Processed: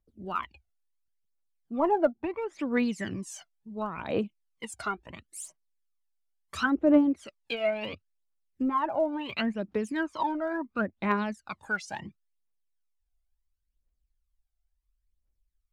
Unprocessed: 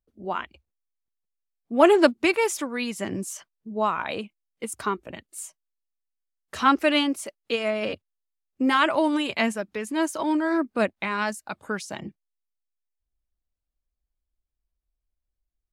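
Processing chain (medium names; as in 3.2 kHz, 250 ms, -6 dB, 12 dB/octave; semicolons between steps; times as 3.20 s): low-pass that closes with the level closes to 770 Hz, closed at -18 dBFS; phaser 0.72 Hz, delay 1.5 ms, feedback 74%; trim -5.5 dB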